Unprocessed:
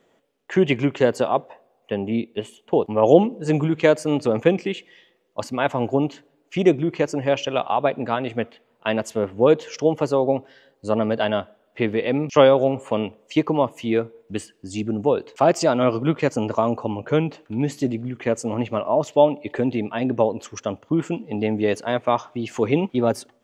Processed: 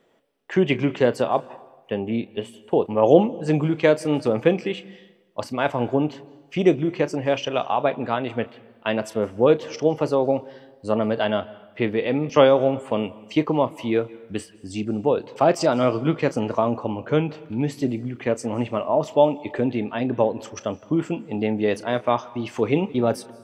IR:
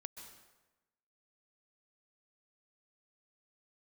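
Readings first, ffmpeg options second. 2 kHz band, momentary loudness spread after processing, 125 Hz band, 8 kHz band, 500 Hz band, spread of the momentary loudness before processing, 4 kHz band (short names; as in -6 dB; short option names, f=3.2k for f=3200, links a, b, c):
-1.0 dB, 11 LU, -1.0 dB, -3.5 dB, -1.0 dB, 11 LU, -1.0 dB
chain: -filter_complex "[0:a]bandreject=f=6.8k:w=5.9,asplit=2[a][b];[1:a]atrim=start_sample=2205,adelay=33[c];[b][c]afir=irnorm=-1:irlink=0,volume=-9.5dB[d];[a][d]amix=inputs=2:normalize=0,volume=-1dB"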